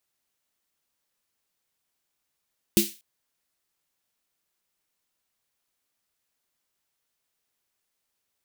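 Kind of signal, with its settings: snare drum length 0.24 s, tones 210 Hz, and 340 Hz, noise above 2.4 kHz, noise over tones -3.5 dB, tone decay 0.19 s, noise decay 0.34 s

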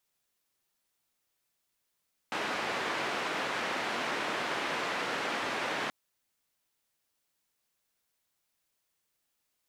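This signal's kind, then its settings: noise band 240–2000 Hz, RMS -33.5 dBFS 3.58 s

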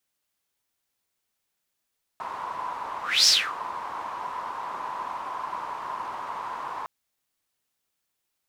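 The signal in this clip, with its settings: whoosh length 4.66 s, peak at 1.07 s, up 0.26 s, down 0.28 s, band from 1 kHz, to 5.4 kHz, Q 7.7, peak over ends 17 dB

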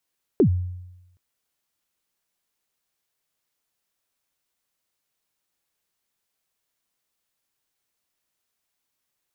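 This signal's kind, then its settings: kick drum length 0.77 s, from 450 Hz, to 90 Hz, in 89 ms, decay 0.96 s, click off, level -11 dB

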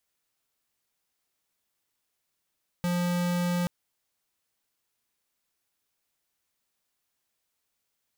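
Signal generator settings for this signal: tone square 176 Hz -27 dBFS 0.83 s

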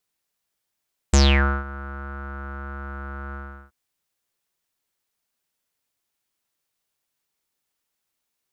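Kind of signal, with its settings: synth note square C#2 12 dB/octave, low-pass 1.4 kHz, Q 12, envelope 2.5 oct, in 0.30 s, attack 6.6 ms, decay 0.50 s, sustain -21.5 dB, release 0.37 s, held 2.21 s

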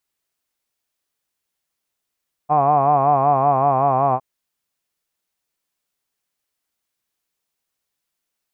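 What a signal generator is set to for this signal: formant-synthesis vowel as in hod, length 1.71 s, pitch 145 Hz, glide -1.5 st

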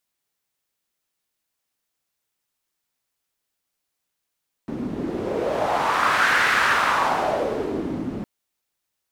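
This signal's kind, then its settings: wind-like swept noise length 3.56 s, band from 240 Hz, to 1.6 kHz, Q 2.6, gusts 1, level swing 10 dB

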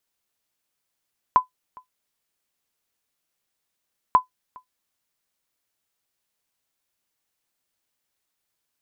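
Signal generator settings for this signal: sonar ping 1.01 kHz, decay 0.12 s, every 2.79 s, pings 2, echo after 0.41 s, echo -27.5 dB -6 dBFS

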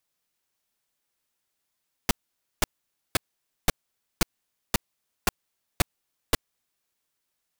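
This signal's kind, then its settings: noise bursts pink, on 0.02 s, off 0.51 s, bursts 9, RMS -19 dBFS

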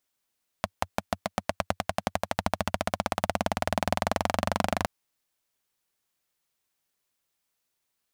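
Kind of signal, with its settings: single-cylinder engine model, changing speed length 4.22 s, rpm 600, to 3000, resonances 92/200/650 Hz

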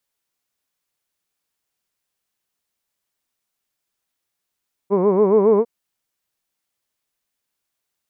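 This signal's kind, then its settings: formant-synthesis vowel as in hood, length 0.75 s, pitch 188 Hz, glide +2.5 st, vibrato 7.2 Hz, vibrato depth 1.35 st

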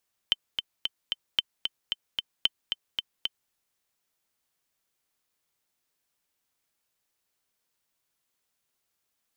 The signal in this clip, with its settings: metronome 225 bpm, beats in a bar 4, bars 3, 3.08 kHz, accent 6 dB -8.5 dBFS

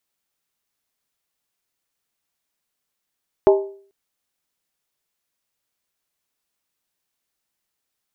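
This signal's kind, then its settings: skin hit length 0.44 s, lowest mode 394 Hz, decay 0.49 s, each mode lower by 6 dB, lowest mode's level -7 dB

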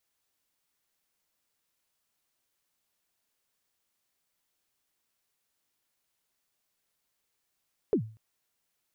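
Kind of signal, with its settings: kick drum length 0.24 s, from 480 Hz, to 110 Hz, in 88 ms, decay 0.39 s, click off, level -18.5 dB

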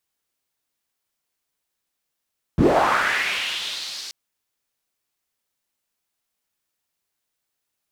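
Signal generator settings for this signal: swept filtered noise pink, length 1.53 s bandpass, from 120 Hz, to 4.9 kHz, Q 2.9, linear, gain ramp -19.5 dB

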